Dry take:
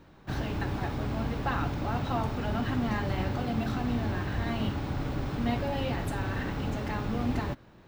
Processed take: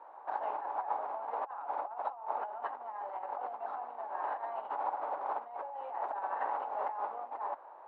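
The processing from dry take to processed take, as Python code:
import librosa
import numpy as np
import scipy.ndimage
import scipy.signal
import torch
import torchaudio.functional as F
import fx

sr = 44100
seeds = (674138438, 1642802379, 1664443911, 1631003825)

y = fx.lowpass_res(x, sr, hz=890.0, q=3.5)
y = fx.over_compress(y, sr, threshold_db=-32.0, ratio=-0.5)
y = scipy.signal.sosfilt(scipy.signal.butter(4, 600.0, 'highpass', fs=sr, output='sos'), y)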